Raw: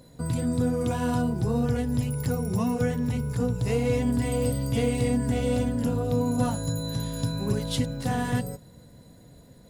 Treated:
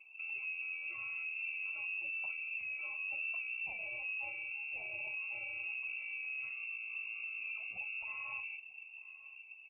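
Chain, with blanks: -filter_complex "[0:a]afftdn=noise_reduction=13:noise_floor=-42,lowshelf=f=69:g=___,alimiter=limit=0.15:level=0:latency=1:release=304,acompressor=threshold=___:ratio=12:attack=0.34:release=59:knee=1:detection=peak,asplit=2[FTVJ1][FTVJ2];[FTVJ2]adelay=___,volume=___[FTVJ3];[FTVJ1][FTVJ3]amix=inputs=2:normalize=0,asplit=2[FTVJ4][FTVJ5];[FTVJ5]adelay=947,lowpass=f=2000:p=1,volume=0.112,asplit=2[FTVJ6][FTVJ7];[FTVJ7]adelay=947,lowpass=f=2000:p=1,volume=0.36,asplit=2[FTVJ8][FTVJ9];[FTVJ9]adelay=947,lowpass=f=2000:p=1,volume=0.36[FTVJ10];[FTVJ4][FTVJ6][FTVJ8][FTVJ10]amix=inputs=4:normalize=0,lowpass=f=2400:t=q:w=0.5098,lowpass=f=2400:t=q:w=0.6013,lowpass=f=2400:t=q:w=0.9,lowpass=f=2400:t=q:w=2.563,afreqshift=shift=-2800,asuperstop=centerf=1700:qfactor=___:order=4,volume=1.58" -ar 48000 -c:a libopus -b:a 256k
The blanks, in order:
-4, 0.0141, 41, 0.237, 1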